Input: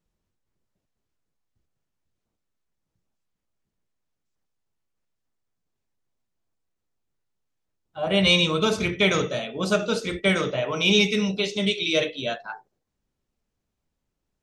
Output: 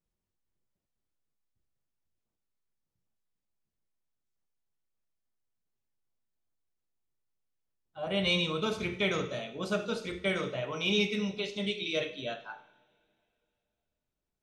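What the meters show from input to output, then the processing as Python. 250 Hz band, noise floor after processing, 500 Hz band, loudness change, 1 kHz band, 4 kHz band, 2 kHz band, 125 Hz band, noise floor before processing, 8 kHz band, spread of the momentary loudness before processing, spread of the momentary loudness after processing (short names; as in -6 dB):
-9.0 dB, under -85 dBFS, -8.5 dB, -9.0 dB, -8.5 dB, -9.5 dB, -9.0 dB, -9.0 dB, -81 dBFS, -13.0 dB, 12 LU, 11 LU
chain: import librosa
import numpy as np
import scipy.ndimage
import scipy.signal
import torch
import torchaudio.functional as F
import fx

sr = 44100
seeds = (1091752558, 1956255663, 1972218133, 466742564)

y = fx.dynamic_eq(x, sr, hz=7100.0, q=0.87, threshold_db=-39.0, ratio=4.0, max_db=-5)
y = fx.rev_double_slope(y, sr, seeds[0], early_s=0.72, late_s=2.9, knee_db=-21, drr_db=9.5)
y = y * 10.0 ** (-9.0 / 20.0)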